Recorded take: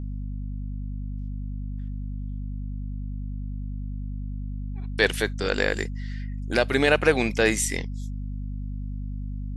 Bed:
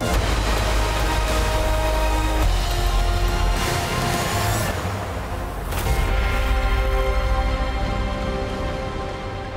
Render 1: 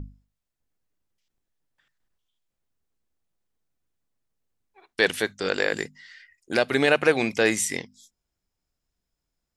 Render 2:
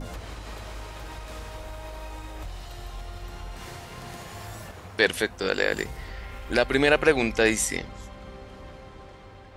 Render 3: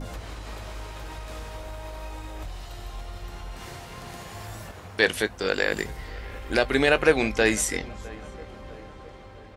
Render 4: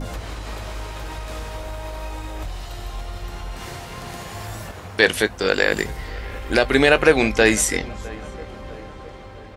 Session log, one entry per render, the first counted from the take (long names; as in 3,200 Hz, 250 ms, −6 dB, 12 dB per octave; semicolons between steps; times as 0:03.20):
mains-hum notches 50/100/150/200/250 Hz
mix in bed −18 dB
double-tracking delay 19 ms −14 dB; feedback echo with a low-pass in the loop 658 ms, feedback 56%, low-pass 1,800 Hz, level −20.5 dB
level +6 dB; brickwall limiter −1 dBFS, peak gain reduction 2 dB